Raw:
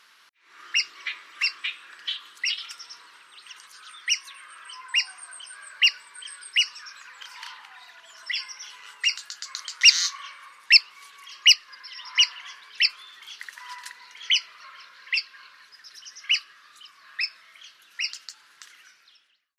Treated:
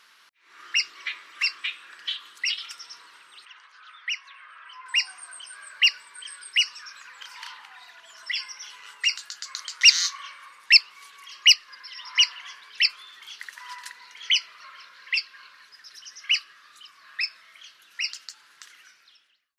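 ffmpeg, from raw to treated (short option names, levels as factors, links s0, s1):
-filter_complex "[0:a]asettb=1/sr,asplit=3[s0][s1][s2];[s0]atrim=end=3.454[s3];[s1]atrim=start=3.45:end=4.86,asetpts=PTS-STARTPTS,afade=t=in:d=0.004:c=qsin,afade=t=out:st=1.406:d=0.004:c=qsin,highpass=630,lowpass=2600[s4];[s2]atrim=start=4.856[s5];[s3][s4]acrossfade=d=0.004:c1=hsin:c2=qsin[s6];[s6][s5]acrossfade=d=0.004:c1=qsin:c2=hsin"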